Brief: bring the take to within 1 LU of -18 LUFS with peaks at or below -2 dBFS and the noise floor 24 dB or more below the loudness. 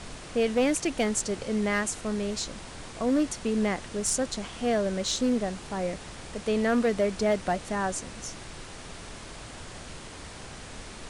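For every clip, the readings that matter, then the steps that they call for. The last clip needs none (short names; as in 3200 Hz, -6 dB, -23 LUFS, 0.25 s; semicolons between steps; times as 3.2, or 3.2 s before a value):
clipped 0.6%; flat tops at -18.5 dBFS; noise floor -43 dBFS; noise floor target -53 dBFS; loudness -28.5 LUFS; peak -18.5 dBFS; loudness target -18.0 LUFS
-> clip repair -18.5 dBFS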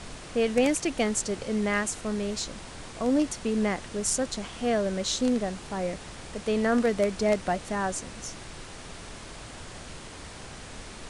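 clipped 0.0%; noise floor -43 dBFS; noise floor target -52 dBFS
-> noise print and reduce 9 dB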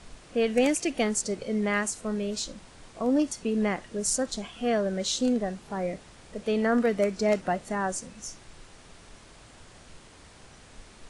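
noise floor -52 dBFS; loudness -28.0 LUFS; peak -10.0 dBFS; loudness target -18.0 LUFS
-> gain +10 dB; limiter -2 dBFS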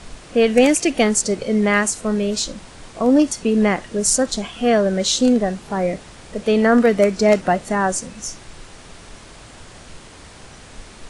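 loudness -18.0 LUFS; peak -2.0 dBFS; noise floor -42 dBFS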